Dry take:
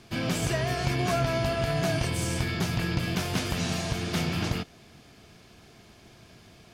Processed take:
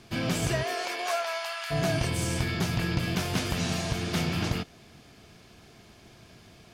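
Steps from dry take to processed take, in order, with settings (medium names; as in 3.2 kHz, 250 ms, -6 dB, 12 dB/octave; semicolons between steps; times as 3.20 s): 0.62–1.70 s: high-pass 310 Hz -> 1.1 kHz 24 dB/octave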